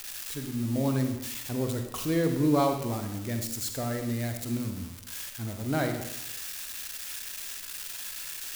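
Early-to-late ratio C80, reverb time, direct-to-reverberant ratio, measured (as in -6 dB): 8.5 dB, 0.95 s, 4.5 dB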